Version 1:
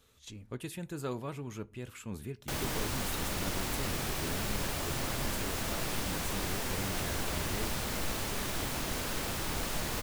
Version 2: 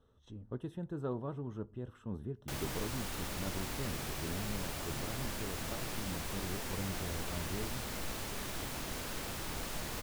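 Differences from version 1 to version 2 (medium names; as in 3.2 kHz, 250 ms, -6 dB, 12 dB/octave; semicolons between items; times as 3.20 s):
speech: add boxcar filter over 19 samples; background -5.5 dB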